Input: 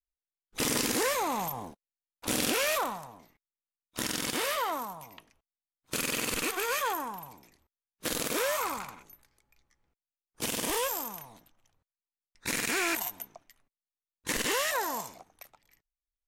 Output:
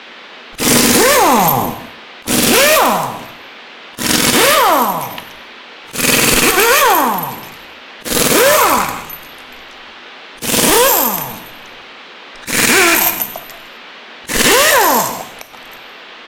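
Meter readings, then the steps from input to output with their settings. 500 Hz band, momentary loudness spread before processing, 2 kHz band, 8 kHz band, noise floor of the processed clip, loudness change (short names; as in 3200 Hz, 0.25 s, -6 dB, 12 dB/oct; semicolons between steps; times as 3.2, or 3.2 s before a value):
+20.0 dB, 17 LU, +19.5 dB, +19.5 dB, -36 dBFS, +19.5 dB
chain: band noise 220–3500 Hz -58 dBFS; in parallel at -4 dB: wavefolder -28 dBFS; on the sum: auto swell 0.167 s; on a send: echo 0.16 s -17 dB; on the sum: non-linear reverb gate 0.29 s falling, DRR 8 dB; maximiser +19 dB; gain -1 dB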